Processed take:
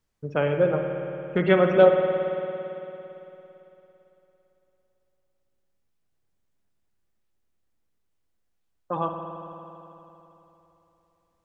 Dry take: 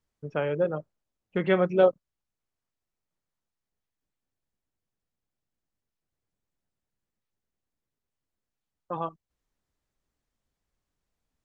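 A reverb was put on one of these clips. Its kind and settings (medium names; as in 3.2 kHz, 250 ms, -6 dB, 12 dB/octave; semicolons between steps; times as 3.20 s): spring tank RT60 3.3 s, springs 56 ms, chirp 60 ms, DRR 4 dB; trim +4 dB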